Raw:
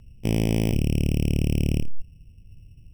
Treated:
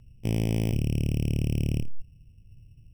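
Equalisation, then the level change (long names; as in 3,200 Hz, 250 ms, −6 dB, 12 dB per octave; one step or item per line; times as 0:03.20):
parametric band 120 Hz +5.5 dB 0.48 octaves
−5.5 dB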